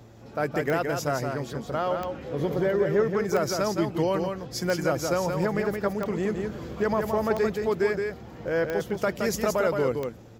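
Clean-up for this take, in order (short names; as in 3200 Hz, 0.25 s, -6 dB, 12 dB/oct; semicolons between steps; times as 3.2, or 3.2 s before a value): de-click; de-hum 113.3 Hz, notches 5; inverse comb 0.17 s -5 dB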